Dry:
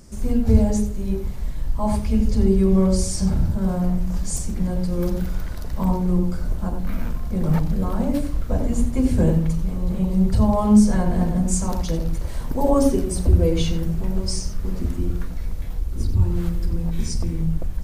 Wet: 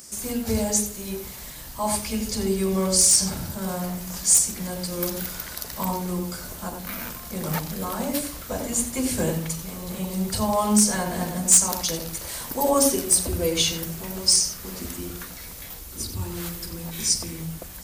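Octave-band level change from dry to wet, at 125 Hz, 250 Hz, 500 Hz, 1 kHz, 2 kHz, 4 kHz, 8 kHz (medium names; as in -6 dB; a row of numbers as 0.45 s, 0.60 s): -10.5 dB, -7.5 dB, -2.5 dB, +1.0 dB, +5.5 dB, +10.5 dB, +13.0 dB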